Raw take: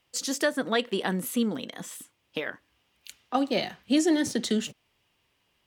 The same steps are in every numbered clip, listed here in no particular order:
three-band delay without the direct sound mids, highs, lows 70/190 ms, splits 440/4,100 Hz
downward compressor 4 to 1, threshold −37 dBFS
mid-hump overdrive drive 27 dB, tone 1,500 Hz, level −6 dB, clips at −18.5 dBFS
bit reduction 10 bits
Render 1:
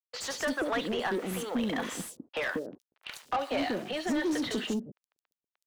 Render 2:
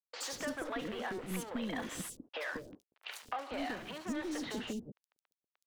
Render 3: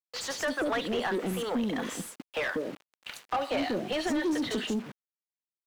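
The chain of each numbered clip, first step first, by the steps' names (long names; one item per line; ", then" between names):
downward compressor, then bit reduction, then three-band delay without the direct sound, then mid-hump overdrive
bit reduction, then mid-hump overdrive, then downward compressor, then three-band delay without the direct sound
three-band delay without the direct sound, then downward compressor, then bit reduction, then mid-hump overdrive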